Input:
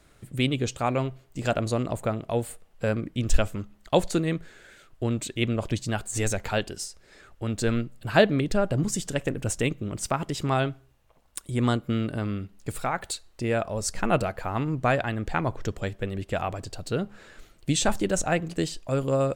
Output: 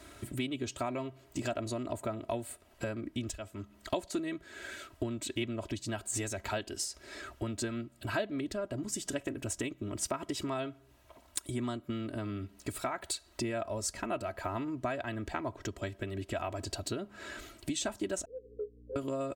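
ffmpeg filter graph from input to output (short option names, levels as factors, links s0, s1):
-filter_complex "[0:a]asettb=1/sr,asplit=3[s0][s1][s2];[s0]atrim=end=18.254[s3];[s1]atrim=start=18.25:end=18.96,asetpts=PTS-STARTPTS,afade=t=in:d=0.004:c=qsin,afade=t=out:st=0.706:d=0.004:c=qsin,asuperpass=centerf=460:order=12:qfactor=4.4,aeval=exprs='val(0)+0.00141*(sin(2*PI*60*n/s)+sin(2*PI*2*60*n/s)/2+sin(2*PI*3*60*n/s)/3+sin(2*PI*4*60*n/s)/4+sin(2*PI*5*60*n/s)/5)':c=same[s4];[s2]atrim=start=18.956[s5];[s3][s4]acrossfade=d=0.004:c1=hsin:c2=qsin[s6];[s6][s5]acrossfade=d=0.004:c1=qsin:c2=hsin,acompressor=threshold=0.0112:ratio=8,highpass=72,aecho=1:1:3.1:0.76,volume=1.88"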